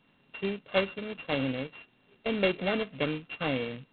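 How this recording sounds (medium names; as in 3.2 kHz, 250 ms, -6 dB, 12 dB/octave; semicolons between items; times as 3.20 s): a buzz of ramps at a fixed pitch in blocks of 16 samples; G.726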